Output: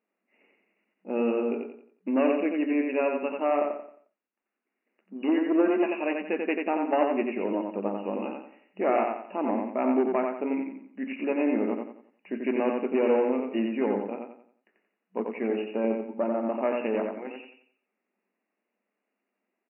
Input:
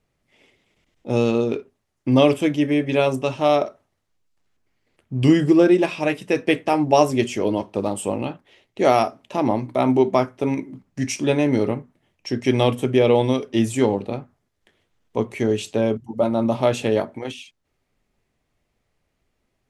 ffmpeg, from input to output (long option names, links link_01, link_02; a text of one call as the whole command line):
ffmpeg -i in.wav -af "aeval=exprs='(tanh(3.16*val(0)+0.4)-tanh(0.4))/3.16':channel_layout=same,afftfilt=real='re*between(b*sr/4096,190,2900)':imag='im*between(b*sr/4096,190,2900)':win_size=4096:overlap=0.75,aecho=1:1:89|178|267|356|445:0.631|0.227|0.0818|0.0294|0.0106,volume=-6.5dB" out.wav